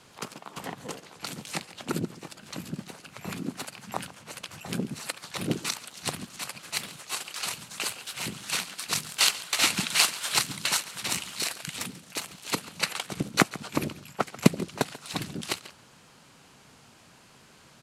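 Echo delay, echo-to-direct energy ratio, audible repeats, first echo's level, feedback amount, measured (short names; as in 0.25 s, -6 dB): 0.139 s, -18.0 dB, 1, -18.0 dB, no steady repeat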